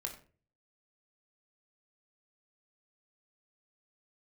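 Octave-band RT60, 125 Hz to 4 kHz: 0.65, 0.50, 0.45, 0.35, 0.35, 0.30 seconds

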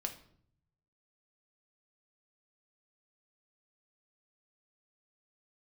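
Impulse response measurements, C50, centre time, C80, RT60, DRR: 11.5 dB, 12 ms, 15.5 dB, 0.60 s, 4.5 dB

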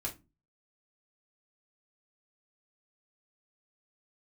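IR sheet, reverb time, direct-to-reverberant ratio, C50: non-exponential decay, −2.5 dB, 14.5 dB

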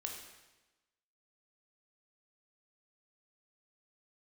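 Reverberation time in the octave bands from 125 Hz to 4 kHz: 1.1, 1.2, 1.1, 1.1, 1.1, 1.0 seconds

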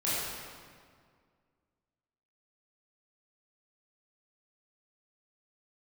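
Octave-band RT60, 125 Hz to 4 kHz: 2.2, 2.3, 2.0, 1.9, 1.6, 1.4 seconds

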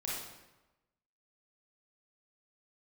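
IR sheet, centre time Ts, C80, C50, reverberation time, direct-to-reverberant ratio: 73 ms, 3.0 dB, −1.5 dB, 1.1 s, −6.0 dB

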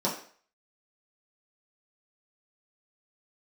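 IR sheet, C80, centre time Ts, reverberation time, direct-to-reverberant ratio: 11.0 dB, 28 ms, 0.50 s, −6.5 dB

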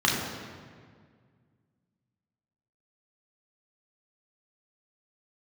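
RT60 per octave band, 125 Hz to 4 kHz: 2.7, 2.4, 2.0, 1.8, 1.6, 1.3 seconds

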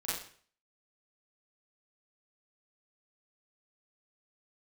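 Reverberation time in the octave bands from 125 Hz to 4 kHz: 0.55, 0.50, 0.50, 0.50, 0.50, 0.45 seconds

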